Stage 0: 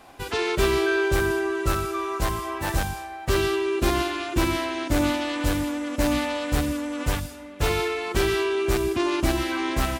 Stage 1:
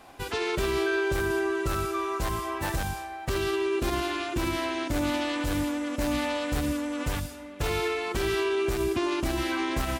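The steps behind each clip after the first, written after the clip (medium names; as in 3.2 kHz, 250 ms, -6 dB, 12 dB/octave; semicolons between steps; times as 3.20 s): peak limiter -17 dBFS, peak gain reduction 7 dB; trim -1.5 dB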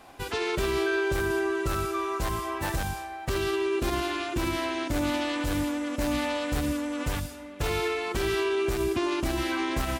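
no audible change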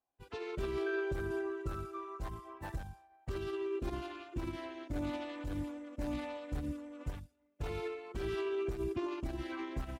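resonances exaggerated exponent 1.5; upward expansion 2.5:1, over -48 dBFS; trim -7 dB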